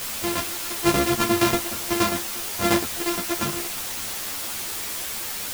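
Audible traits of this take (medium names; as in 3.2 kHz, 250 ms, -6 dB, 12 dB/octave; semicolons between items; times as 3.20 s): a buzz of ramps at a fixed pitch in blocks of 128 samples; tremolo saw down 8.5 Hz, depth 85%; a quantiser's noise floor 6-bit, dither triangular; a shimmering, thickened sound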